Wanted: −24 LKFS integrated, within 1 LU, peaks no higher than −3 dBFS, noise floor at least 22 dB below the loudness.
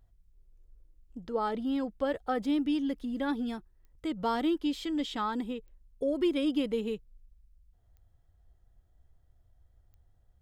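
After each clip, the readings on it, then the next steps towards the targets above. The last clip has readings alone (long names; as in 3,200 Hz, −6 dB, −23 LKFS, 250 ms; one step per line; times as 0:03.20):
number of clicks 4; integrated loudness −32.0 LKFS; sample peak −19.0 dBFS; target loudness −24.0 LKFS
→ click removal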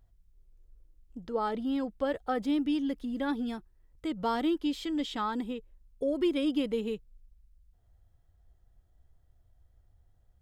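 number of clicks 0; integrated loudness −32.0 LKFS; sample peak −19.0 dBFS; target loudness −24.0 LKFS
→ level +8 dB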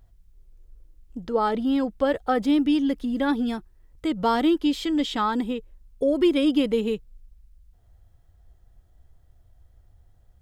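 integrated loudness −24.0 LKFS; sample peak −11.0 dBFS; background noise floor −58 dBFS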